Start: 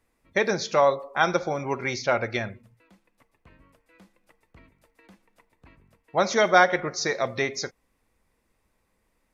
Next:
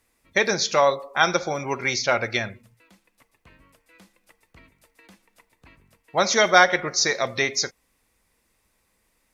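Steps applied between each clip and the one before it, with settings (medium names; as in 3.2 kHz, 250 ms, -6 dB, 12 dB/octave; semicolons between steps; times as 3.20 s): treble shelf 2.1 kHz +10 dB; Chebyshev shaper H 4 -42 dB, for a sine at -1 dBFS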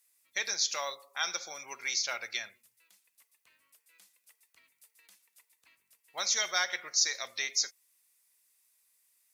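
differentiator; in parallel at -2.5 dB: peak limiter -22.5 dBFS, peak gain reduction 10.5 dB; on the sum: trim -4.5 dB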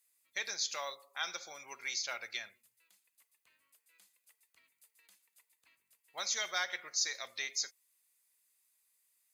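band-stop 5.6 kHz, Q 11; trim -4.5 dB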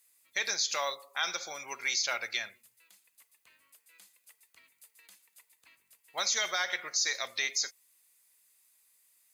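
peak limiter -27 dBFS, peak gain reduction 7.5 dB; trim +8 dB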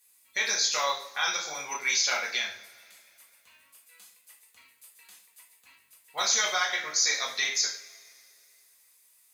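reverberation, pre-delay 3 ms, DRR -3 dB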